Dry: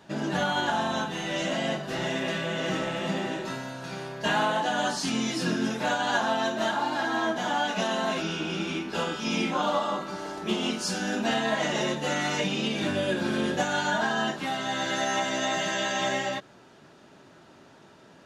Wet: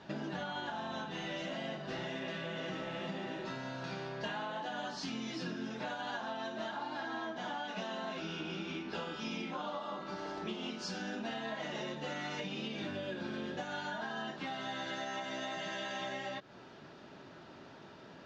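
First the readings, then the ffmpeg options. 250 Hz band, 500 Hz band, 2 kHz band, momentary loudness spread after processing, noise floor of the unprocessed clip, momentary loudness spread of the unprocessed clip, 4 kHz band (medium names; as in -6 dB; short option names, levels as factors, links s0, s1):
-11.5 dB, -12.0 dB, -12.0 dB, 3 LU, -53 dBFS, 5 LU, -12.0 dB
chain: -af "lowpass=f=5500:w=0.5412,lowpass=f=5500:w=1.3066,acompressor=threshold=0.0126:ratio=6"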